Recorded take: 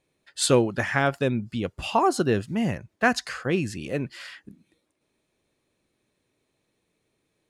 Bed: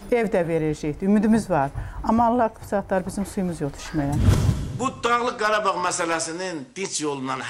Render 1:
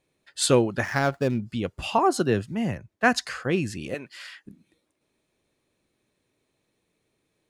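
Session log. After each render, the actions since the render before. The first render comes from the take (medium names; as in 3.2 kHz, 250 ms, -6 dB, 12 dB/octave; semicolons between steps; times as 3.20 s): 0.84–1.44 s: median filter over 15 samples; 1.98–3.25 s: three bands expanded up and down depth 40%; 3.94–4.46 s: high-pass 930 Hz 6 dB/octave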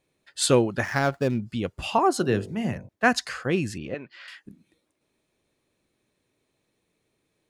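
2.17–2.89 s: de-hum 46.95 Hz, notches 22; 3.78–4.28 s: distance through air 230 m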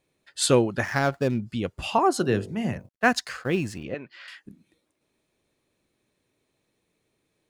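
2.79–3.84 s: companding laws mixed up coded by A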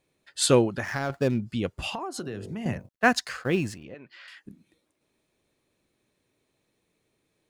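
0.68–1.10 s: compression 2:1, threshold -29 dBFS; 1.89–2.66 s: compression 10:1, threshold -30 dBFS; 3.74–4.37 s: compression 2:1, threshold -46 dBFS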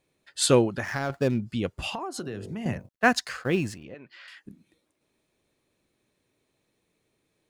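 no audible change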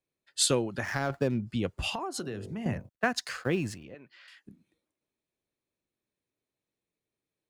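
compression 6:1, threshold -25 dBFS, peak gain reduction 11 dB; three bands expanded up and down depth 40%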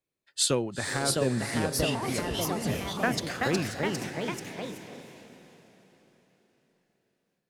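echo that smears into a reverb 465 ms, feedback 47%, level -10 dB; ever faster or slower copies 712 ms, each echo +2 st, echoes 3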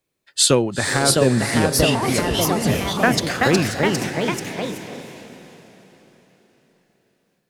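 trim +10.5 dB; peak limiter -3 dBFS, peak gain reduction 2 dB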